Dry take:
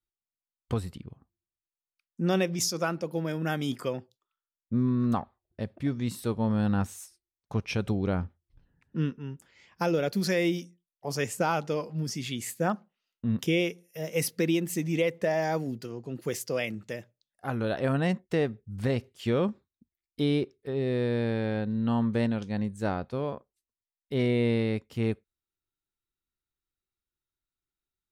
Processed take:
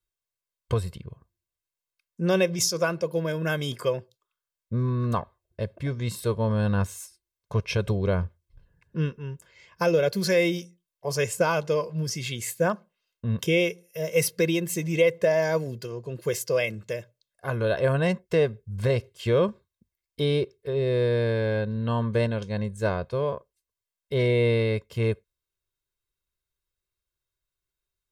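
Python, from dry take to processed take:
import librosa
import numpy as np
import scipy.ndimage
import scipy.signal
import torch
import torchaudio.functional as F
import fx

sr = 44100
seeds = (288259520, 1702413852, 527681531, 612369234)

y = x + 0.7 * np.pad(x, (int(1.9 * sr / 1000.0), 0))[:len(x)]
y = y * librosa.db_to_amplitude(2.5)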